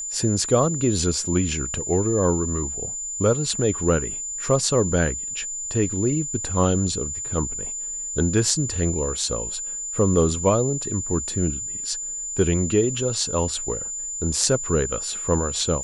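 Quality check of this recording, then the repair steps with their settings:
whine 7.1 kHz -28 dBFS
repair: band-stop 7.1 kHz, Q 30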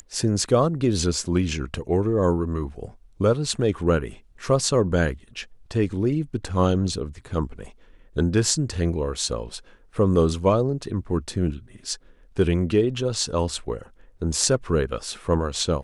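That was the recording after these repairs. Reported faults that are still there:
nothing left

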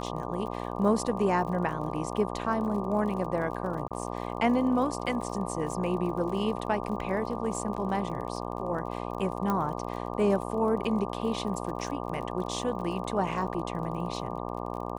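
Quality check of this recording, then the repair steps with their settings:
buzz 60 Hz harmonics 20 -35 dBFS
crackle 41 per s -38 dBFS
3.88–3.91 s: dropout 27 ms
9.50 s: pop -16 dBFS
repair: de-click; de-hum 60 Hz, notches 20; interpolate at 3.88 s, 27 ms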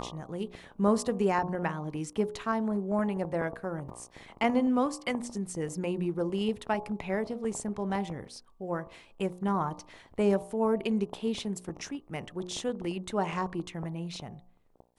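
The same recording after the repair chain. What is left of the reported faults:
nothing left

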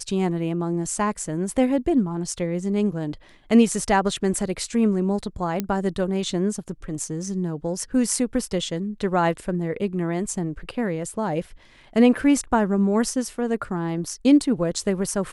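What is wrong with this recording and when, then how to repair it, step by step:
5.60 s: pop -11 dBFS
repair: de-click

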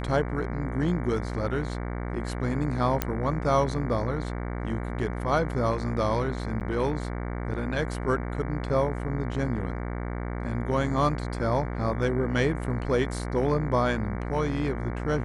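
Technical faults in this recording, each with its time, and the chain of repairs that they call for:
buzz 60 Hz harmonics 38 -32 dBFS
3.02 s: pop -9 dBFS
6.60–6.61 s: dropout 8.8 ms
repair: de-click; de-hum 60 Hz, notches 38; interpolate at 6.60 s, 8.8 ms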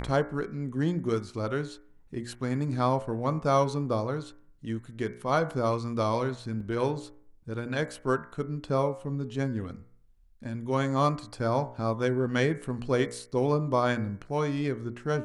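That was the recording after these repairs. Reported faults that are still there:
3.02 s: pop

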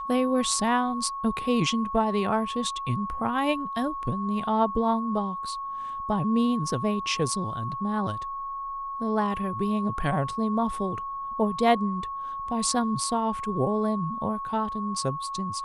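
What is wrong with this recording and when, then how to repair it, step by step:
whine 1.1 kHz -31 dBFS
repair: band-stop 1.1 kHz, Q 30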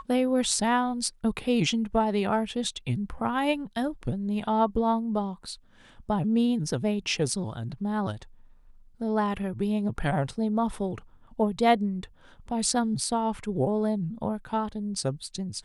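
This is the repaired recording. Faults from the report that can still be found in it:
nothing left

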